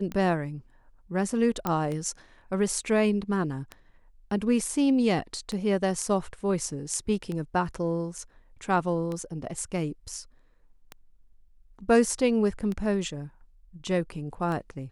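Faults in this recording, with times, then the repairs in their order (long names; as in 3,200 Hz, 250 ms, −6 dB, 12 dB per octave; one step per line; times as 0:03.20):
scratch tick 33 1/3 rpm −21 dBFS
0:01.67: click −13 dBFS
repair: click removal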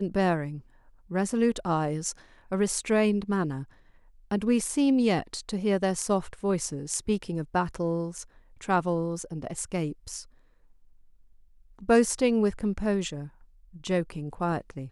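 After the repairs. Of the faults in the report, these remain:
none of them is left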